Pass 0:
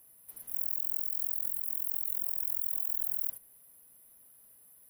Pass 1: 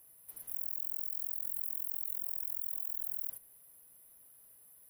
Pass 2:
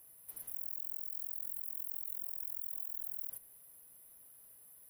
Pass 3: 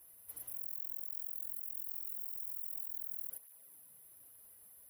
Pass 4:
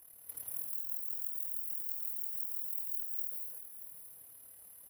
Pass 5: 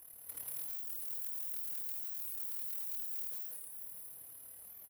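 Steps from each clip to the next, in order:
peaking EQ 230 Hz -7.5 dB 0.26 oct; in parallel at -1 dB: compressor with a negative ratio -37 dBFS, ratio -0.5; on the sum: trim -8.5 dB
peak limiter -28.5 dBFS, peak gain reduction 7 dB; trim +1 dB
cancelling through-zero flanger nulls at 0.43 Hz, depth 7.5 ms; trim +3 dB
AM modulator 37 Hz, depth 55%; delay 630 ms -12 dB; gated-style reverb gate 250 ms rising, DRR 1.5 dB; trim +5 dB
saturation -38.5 dBFS, distortion -8 dB; delay 108 ms -13.5 dB; warped record 45 rpm, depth 250 cents; trim +2.5 dB

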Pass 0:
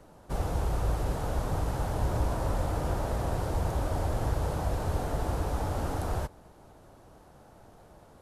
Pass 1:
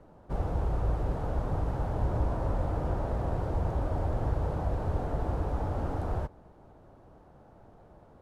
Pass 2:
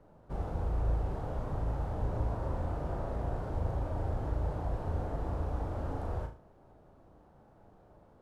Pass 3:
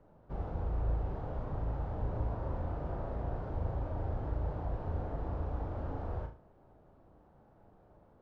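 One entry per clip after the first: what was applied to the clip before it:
low-pass 1.1 kHz 6 dB/octave
flutter echo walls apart 6.3 m, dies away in 0.36 s; trim -5.5 dB
distance through air 160 m; trim -2 dB

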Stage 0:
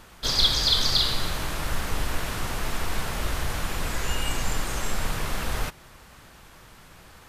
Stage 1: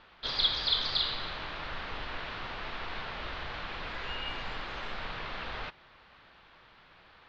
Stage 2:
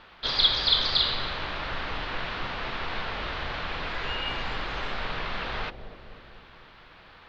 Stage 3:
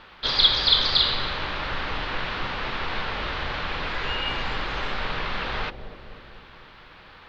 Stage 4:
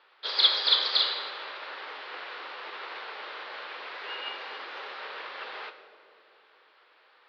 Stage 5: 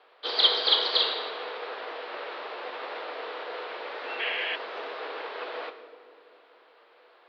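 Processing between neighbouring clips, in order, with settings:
steep low-pass 4.2 kHz 36 dB/octave; bass shelf 350 Hz -11.5 dB; trim -4.5 dB
bucket-brigade echo 249 ms, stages 1024, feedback 61%, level -8 dB; trim +6 dB
band-stop 680 Hz, Q 16; trim +3.5 dB
Chebyshev band-pass 410–5100 Hz, order 3; plate-style reverb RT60 1.5 s, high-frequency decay 0.85×, DRR 5.5 dB; upward expansion 1.5:1, over -36 dBFS; trim -2 dB
painted sound noise, 4.19–4.56 s, 1.7–3.5 kHz -32 dBFS; frequency shift -140 Hz; resonant high-pass 490 Hz, resonance Q 4.9

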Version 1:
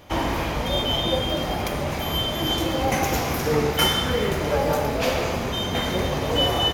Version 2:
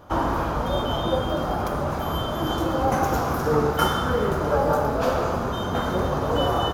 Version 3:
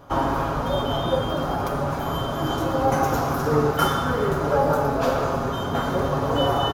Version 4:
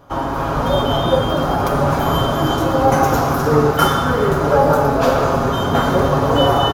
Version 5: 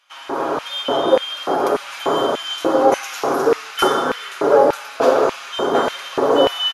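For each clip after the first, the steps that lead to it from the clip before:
resonant high shelf 1.7 kHz -7 dB, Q 3
comb 7.3 ms, depth 46%
level rider gain up to 10.5 dB
LFO high-pass square 1.7 Hz 380–2500 Hz; brick-wall FIR low-pass 12 kHz; trim -2.5 dB

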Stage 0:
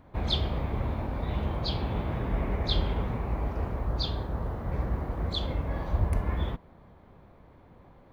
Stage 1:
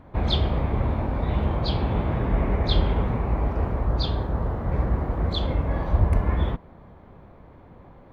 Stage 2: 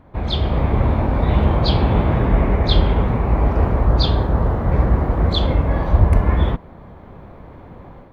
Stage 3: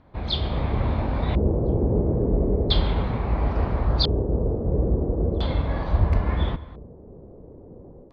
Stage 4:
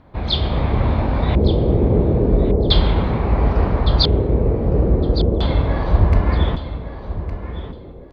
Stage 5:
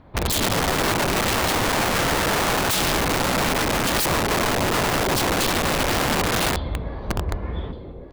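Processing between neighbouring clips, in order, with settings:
treble shelf 4.2 kHz -10.5 dB; trim +6.5 dB
level rider gain up to 9 dB
on a send at -17 dB: reverberation RT60 1.4 s, pre-delay 118 ms; on the sum: LFO low-pass square 0.37 Hz 440–4500 Hz; trim -7 dB
feedback delay 1161 ms, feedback 18%, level -12 dB; trim +6 dB
integer overflow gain 16.5 dB

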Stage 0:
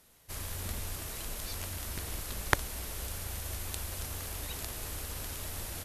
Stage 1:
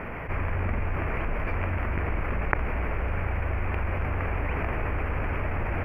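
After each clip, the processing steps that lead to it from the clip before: elliptic low-pass 2.4 kHz, stop band 40 dB; level flattener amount 70%; trim +1.5 dB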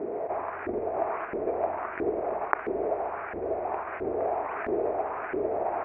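small resonant body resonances 400/660 Hz, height 15 dB, ringing for 20 ms; LFO band-pass saw up 1.5 Hz 320–1700 Hz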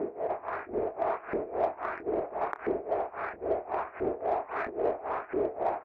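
tremolo 3.7 Hz, depth 90%; in parallel at -8 dB: saturation -32 dBFS, distortion -9 dB; on the sum: doubling 27 ms -13.5 dB

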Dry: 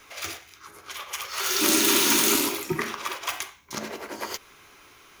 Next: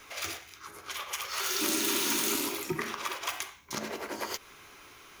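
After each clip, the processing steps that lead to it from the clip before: compression 2:1, threshold -33 dBFS, peak gain reduction 9 dB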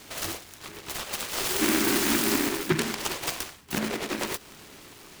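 peaking EQ 200 Hz +8.5 dB 1.8 oct; delay time shaken by noise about 1.6 kHz, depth 0.22 ms; trim +3.5 dB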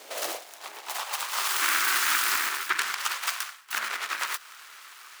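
high-pass sweep 540 Hz -> 1.3 kHz, 0.18–1.73 s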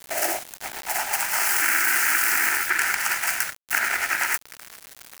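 in parallel at -2 dB: compressor with a negative ratio -29 dBFS, ratio -0.5; on the sum: static phaser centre 740 Hz, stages 8; word length cut 6-bit, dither none; trim +4 dB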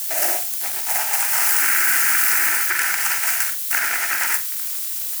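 zero-crossing glitches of -17.5 dBFS; bass shelf 350 Hz -3 dB; flutter echo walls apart 7.5 m, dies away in 0.26 s

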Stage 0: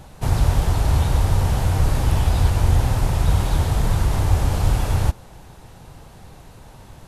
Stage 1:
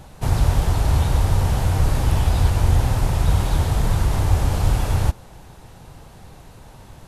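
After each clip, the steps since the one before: no audible change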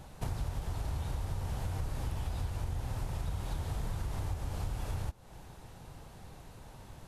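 compression 6:1, threshold -25 dBFS, peak gain reduction 14.5 dB; trim -7.5 dB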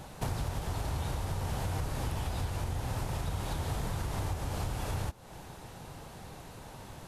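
bass shelf 87 Hz -9.5 dB; hard clipper -32 dBFS, distortion -27 dB; trim +6.5 dB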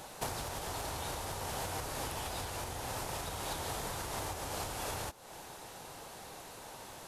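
tone controls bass -13 dB, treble +4 dB; trim +1 dB

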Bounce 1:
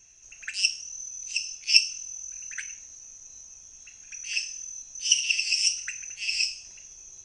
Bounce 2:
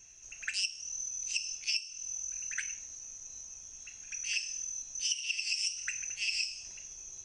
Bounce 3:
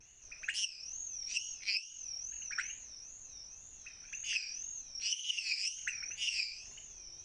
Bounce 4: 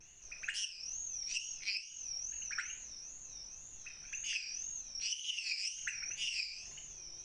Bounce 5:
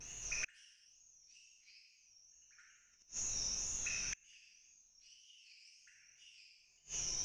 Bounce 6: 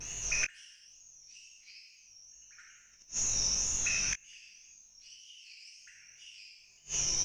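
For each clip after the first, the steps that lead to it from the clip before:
compression 20:1, threshold -29 dBFS, peak gain reduction 19 dB
wow and flutter 140 cents; treble shelf 6 kHz -9 dB
compression 2:1, threshold -39 dBFS, peak gain reduction 6 dB; reverberation RT60 0.55 s, pre-delay 6 ms, DRR 8.5 dB; trim +1 dB
gated-style reverb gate 390 ms falling, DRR -3 dB; inverted gate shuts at -33 dBFS, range -33 dB; trim +5.5 dB
doubling 20 ms -9 dB; trim +8.5 dB

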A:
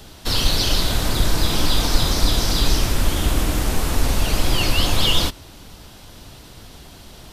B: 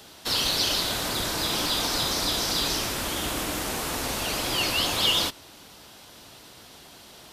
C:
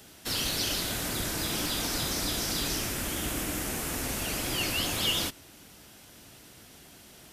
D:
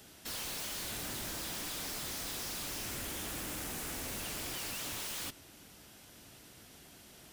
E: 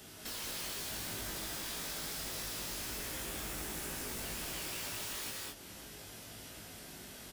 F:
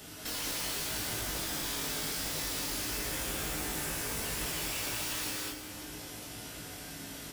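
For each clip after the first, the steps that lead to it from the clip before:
high-pass 390 Hz 6 dB/octave; trim -2.5 dB
ten-band graphic EQ 500 Hz -4 dB, 1 kHz -8 dB, 4 kHz -8 dB
wavefolder -31.5 dBFS; trim -4 dB
doubling 19 ms -4.5 dB; gated-style reverb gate 240 ms rising, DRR -1 dB; compression 2:1, threshold -46 dBFS, peak gain reduction 8 dB; trim +2 dB
FDN reverb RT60 1.7 s, low-frequency decay 1.2×, high-frequency decay 0.65×, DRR 3.5 dB; trim +4 dB

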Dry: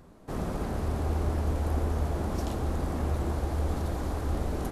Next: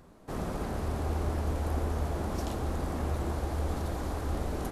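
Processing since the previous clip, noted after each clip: bass shelf 430 Hz -3 dB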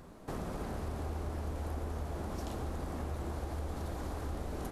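compression 3:1, threshold -41 dBFS, peak gain reduction 11.5 dB; trim +3 dB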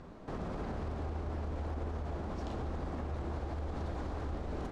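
peak limiter -32 dBFS, peak gain reduction 5 dB; distance through air 120 m; trim +2.5 dB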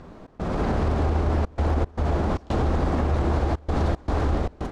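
level rider gain up to 9 dB; trance gate "xx.xxxxxxxx.xx.x" 114 bpm -24 dB; trim +6.5 dB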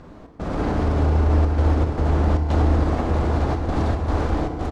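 on a send: delay 903 ms -6.5 dB; on the sum: FDN reverb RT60 2.2 s, low-frequency decay 1.25×, high-frequency decay 0.65×, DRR 5.5 dB

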